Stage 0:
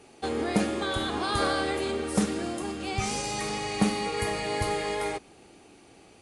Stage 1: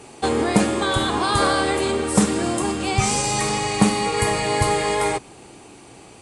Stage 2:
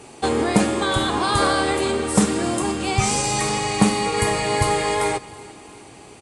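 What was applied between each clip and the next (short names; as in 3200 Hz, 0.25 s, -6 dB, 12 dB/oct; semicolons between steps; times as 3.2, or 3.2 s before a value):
thirty-one-band EQ 125 Hz +7 dB, 1000 Hz +6 dB, 8000 Hz +8 dB; in parallel at +3 dB: vocal rider 0.5 s
feedback echo 0.357 s, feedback 57%, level -21 dB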